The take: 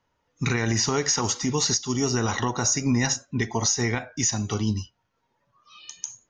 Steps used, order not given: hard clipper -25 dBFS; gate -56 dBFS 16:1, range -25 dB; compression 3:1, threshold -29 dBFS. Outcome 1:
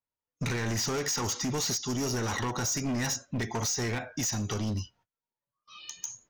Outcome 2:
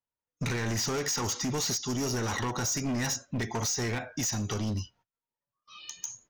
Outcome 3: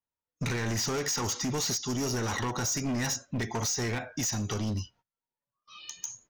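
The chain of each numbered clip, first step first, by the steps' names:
gate > hard clipper > compression; hard clipper > gate > compression; hard clipper > compression > gate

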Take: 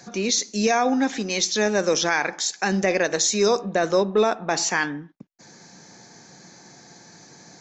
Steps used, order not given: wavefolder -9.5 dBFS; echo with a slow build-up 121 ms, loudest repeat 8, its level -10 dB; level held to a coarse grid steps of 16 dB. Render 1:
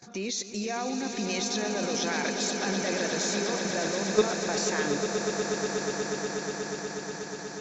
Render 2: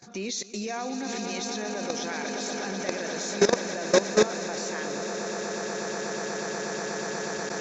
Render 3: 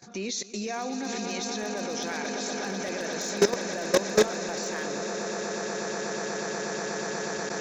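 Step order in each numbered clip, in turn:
wavefolder > level held to a coarse grid > echo with a slow build-up; wavefolder > echo with a slow build-up > level held to a coarse grid; echo with a slow build-up > wavefolder > level held to a coarse grid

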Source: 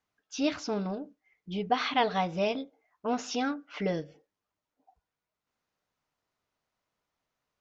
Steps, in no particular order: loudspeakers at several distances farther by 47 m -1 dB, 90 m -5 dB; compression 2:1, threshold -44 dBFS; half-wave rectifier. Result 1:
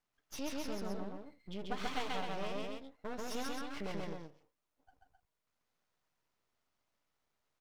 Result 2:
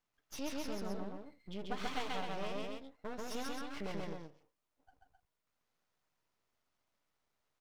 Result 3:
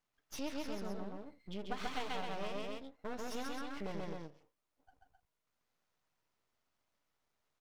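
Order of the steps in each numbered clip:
half-wave rectifier > compression > loudspeakers at several distances; compression > half-wave rectifier > loudspeakers at several distances; half-wave rectifier > loudspeakers at several distances > compression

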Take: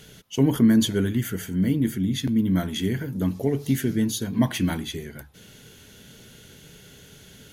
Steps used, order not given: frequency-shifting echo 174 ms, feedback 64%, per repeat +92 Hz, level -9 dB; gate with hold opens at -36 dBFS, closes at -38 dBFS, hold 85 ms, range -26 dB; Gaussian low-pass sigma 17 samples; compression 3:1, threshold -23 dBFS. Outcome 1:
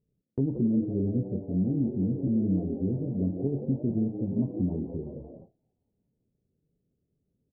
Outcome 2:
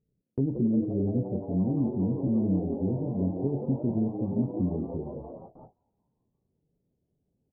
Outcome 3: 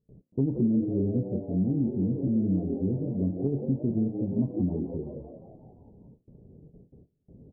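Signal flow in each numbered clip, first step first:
compression > frequency-shifting echo > Gaussian low-pass > gate with hold; compression > Gaussian low-pass > frequency-shifting echo > gate with hold; frequency-shifting echo > gate with hold > Gaussian low-pass > compression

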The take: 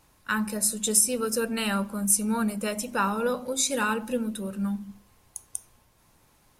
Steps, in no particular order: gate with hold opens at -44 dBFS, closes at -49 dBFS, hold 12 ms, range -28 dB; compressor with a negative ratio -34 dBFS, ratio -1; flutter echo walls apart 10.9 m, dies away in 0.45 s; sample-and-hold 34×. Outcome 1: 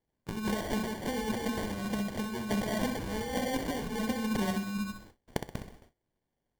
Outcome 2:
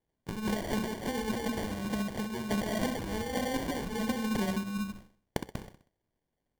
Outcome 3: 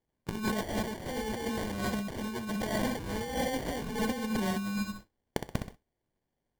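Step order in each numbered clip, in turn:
compressor with a negative ratio > sample-and-hold > flutter echo > gate with hold; gate with hold > compressor with a negative ratio > flutter echo > sample-and-hold; sample-and-hold > flutter echo > gate with hold > compressor with a negative ratio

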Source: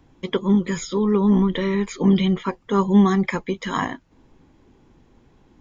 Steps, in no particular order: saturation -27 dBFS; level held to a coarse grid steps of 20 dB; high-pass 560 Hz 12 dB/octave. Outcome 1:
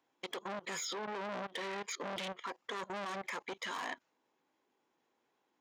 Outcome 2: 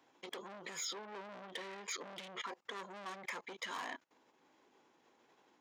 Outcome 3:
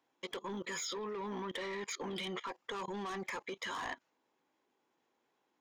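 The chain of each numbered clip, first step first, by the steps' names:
saturation > high-pass > level held to a coarse grid; saturation > level held to a coarse grid > high-pass; high-pass > saturation > level held to a coarse grid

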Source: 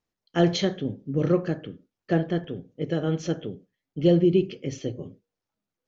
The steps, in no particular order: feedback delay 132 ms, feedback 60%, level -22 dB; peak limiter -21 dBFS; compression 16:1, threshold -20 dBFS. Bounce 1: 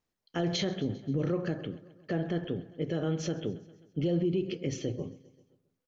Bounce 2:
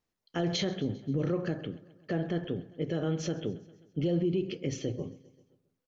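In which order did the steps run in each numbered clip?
feedback delay > compression > peak limiter; compression > feedback delay > peak limiter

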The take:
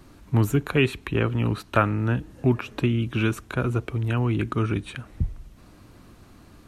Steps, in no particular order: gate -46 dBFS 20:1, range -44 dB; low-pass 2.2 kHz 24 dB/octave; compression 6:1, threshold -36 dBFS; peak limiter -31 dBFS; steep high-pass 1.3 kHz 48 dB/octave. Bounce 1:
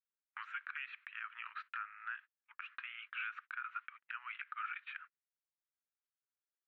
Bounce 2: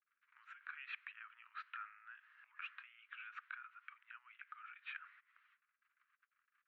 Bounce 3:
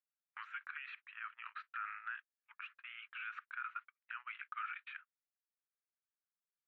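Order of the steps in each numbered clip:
steep high-pass > gate > low-pass > compression > peak limiter; gate > low-pass > peak limiter > compression > steep high-pass; steep high-pass > peak limiter > compression > gate > low-pass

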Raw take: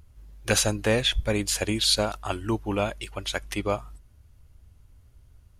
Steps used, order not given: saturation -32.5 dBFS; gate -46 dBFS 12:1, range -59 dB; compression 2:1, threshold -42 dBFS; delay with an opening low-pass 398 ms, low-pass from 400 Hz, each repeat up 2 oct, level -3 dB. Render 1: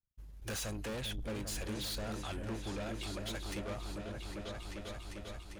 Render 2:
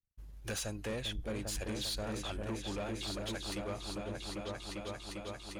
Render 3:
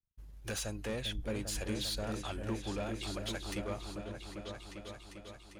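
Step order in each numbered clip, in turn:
saturation > delay with an opening low-pass > gate > compression; gate > delay with an opening low-pass > compression > saturation; compression > gate > saturation > delay with an opening low-pass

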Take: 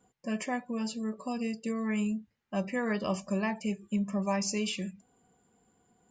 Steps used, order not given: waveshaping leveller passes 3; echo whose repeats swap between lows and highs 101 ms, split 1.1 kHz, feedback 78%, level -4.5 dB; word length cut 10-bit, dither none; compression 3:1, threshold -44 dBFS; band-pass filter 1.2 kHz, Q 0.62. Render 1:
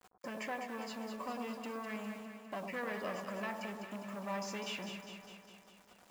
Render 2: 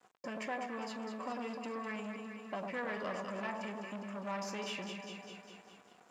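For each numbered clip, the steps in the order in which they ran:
compression > waveshaping leveller > band-pass filter > word length cut > echo whose repeats swap between lows and highs; compression > echo whose repeats swap between lows and highs > waveshaping leveller > word length cut > band-pass filter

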